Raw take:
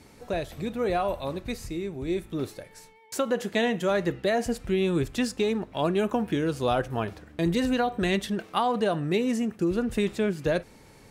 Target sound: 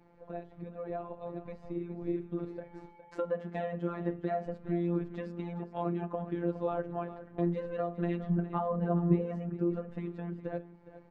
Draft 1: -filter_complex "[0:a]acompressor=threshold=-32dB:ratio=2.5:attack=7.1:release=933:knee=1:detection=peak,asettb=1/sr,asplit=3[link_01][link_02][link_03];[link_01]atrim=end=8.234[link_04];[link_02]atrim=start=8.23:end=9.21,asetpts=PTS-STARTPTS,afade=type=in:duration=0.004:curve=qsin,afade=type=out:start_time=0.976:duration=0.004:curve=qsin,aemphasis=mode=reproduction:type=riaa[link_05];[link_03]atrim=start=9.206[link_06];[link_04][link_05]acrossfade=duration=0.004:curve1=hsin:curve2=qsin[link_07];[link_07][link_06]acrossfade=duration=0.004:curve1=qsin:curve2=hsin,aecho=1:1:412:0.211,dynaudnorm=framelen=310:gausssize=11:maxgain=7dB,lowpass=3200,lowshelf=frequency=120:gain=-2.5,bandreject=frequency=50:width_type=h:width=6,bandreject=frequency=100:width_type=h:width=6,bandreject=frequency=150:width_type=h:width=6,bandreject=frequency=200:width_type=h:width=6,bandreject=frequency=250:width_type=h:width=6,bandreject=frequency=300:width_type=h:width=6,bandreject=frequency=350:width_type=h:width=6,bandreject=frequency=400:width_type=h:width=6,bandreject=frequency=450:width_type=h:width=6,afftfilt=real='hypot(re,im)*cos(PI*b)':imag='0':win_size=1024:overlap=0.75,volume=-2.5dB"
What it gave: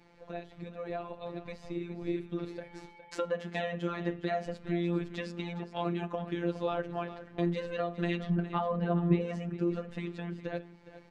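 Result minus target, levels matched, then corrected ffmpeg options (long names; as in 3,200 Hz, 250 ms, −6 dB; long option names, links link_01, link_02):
4,000 Hz band +14.5 dB
-filter_complex "[0:a]acompressor=threshold=-32dB:ratio=2.5:attack=7.1:release=933:knee=1:detection=peak,asettb=1/sr,asplit=3[link_01][link_02][link_03];[link_01]atrim=end=8.234[link_04];[link_02]atrim=start=8.23:end=9.21,asetpts=PTS-STARTPTS,afade=type=in:duration=0.004:curve=qsin,afade=type=out:start_time=0.976:duration=0.004:curve=qsin,aemphasis=mode=reproduction:type=riaa[link_05];[link_03]atrim=start=9.206[link_06];[link_04][link_05]acrossfade=duration=0.004:curve1=hsin:curve2=qsin[link_07];[link_07][link_06]acrossfade=duration=0.004:curve1=qsin:curve2=hsin,aecho=1:1:412:0.211,dynaudnorm=framelen=310:gausssize=11:maxgain=7dB,lowpass=1200,lowshelf=frequency=120:gain=-2.5,bandreject=frequency=50:width_type=h:width=6,bandreject=frequency=100:width_type=h:width=6,bandreject=frequency=150:width_type=h:width=6,bandreject=frequency=200:width_type=h:width=6,bandreject=frequency=250:width_type=h:width=6,bandreject=frequency=300:width_type=h:width=6,bandreject=frequency=350:width_type=h:width=6,bandreject=frequency=400:width_type=h:width=6,bandreject=frequency=450:width_type=h:width=6,afftfilt=real='hypot(re,im)*cos(PI*b)':imag='0':win_size=1024:overlap=0.75,volume=-2.5dB"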